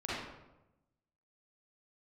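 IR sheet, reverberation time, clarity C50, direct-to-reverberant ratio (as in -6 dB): 1.0 s, -4.5 dB, -9.5 dB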